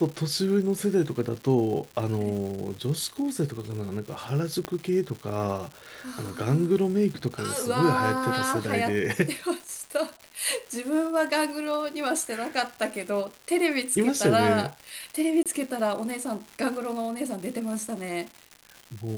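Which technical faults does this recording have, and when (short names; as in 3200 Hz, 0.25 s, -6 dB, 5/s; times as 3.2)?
crackle 300/s -35 dBFS
4.65 pop -15 dBFS
15.43–15.46 gap 27 ms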